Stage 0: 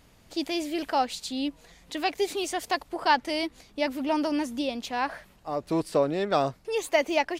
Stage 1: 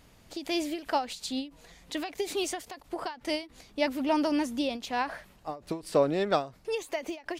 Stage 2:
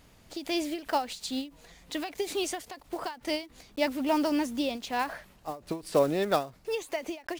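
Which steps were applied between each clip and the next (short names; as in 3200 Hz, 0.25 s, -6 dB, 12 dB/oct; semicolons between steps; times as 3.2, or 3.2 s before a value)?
ending taper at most 180 dB/s
block floating point 5-bit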